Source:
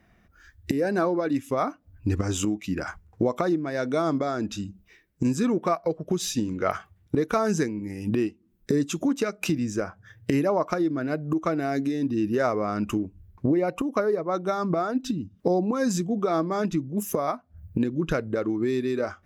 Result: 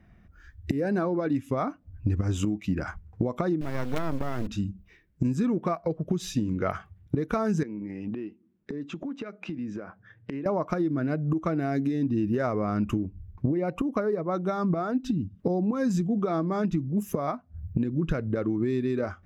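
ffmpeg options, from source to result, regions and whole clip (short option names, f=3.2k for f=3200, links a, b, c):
-filter_complex "[0:a]asettb=1/sr,asplit=3[a][b][c];[a]atrim=end=3.614[d];[b]atrim=start=3.61:end=4.47,asetpts=PTS-STARTPTS,afade=t=in:d=0.004:c=qsin,afade=t=out:st=0.856:d=0.004:c=qsin,highpass=f=150:p=1,acrusher=bits=4:dc=4:mix=0:aa=0.000001[e];[c]atrim=start=4.466[f];[d][e]acrossfade=d=0.004:c1=hsin:c2=qsin[g];[g][f]acrossfade=d=0.004:c1=qsin:c2=hsin,asettb=1/sr,asplit=3[h][i][j];[h]atrim=end=7.634[k];[i]atrim=start=7.63:end=10.46,asetpts=PTS-STARTPTS,afade=t=in:d=0.004:c=qsin,afade=t=out:st=2.826:d=0.004:c=qsin,highpass=220,lowpass=3.2k,acompressor=threshold=-33dB:ratio=5:attack=3.2:release=140:knee=1:detection=peak[l];[j]atrim=start=10.456[m];[k][l]acrossfade=d=0.004:c1=hsin:c2=qsin[n];[n][m]acrossfade=d=0.004:c1=qsin:c2=hsin,bass=f=250:g=9,treble=f=4k:g=-7,acompressor=threshold=-20dB:ratio=6,volume=-2dB"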